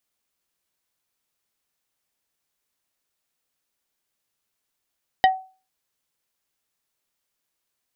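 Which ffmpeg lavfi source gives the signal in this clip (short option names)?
-f lavfi -i "aevalsrc='0.335*pow(10,-3*t/0.35)*sin(2*PI*756*t)+0.188*pow(10,-3*t/0.117)*sin(2*PI*1890*t)+0.106*pow(10,-3*t/0.066)*sin(2*PI*3024*t)+0.0596*pow(10,-3*t/0.051)*sin(2*PI*3780*t)+0.0335*pow(10,-3*t/0.037)*sin(2*PI*4914*t)':d=0.45:s=44100"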